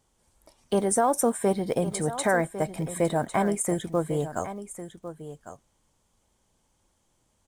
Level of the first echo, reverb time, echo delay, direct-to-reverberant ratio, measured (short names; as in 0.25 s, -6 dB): -12.5 dB, none, 1.102 s, none